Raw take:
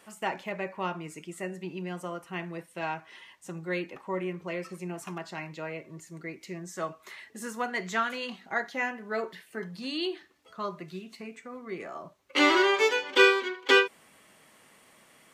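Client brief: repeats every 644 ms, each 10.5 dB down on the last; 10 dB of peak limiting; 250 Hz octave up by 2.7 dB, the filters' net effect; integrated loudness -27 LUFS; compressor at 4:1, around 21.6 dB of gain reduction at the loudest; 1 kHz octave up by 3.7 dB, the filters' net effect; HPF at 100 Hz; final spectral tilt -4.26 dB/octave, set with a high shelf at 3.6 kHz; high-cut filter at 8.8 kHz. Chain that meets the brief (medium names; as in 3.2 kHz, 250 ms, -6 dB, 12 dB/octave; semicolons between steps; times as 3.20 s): high-pass 100 Hz; low-pass 8.8 kHz; peaking EQ 250 Hz +4 dB; peaking EQ 1 kHz +5 dB; treble shelf 3.6 kHz -6 dB; compression 4:1, threshold -41 dBFS; peak limiter -35 dBFS; feedback delay 644 ms, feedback 30%, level -10.5 dB; trim +18.5 dB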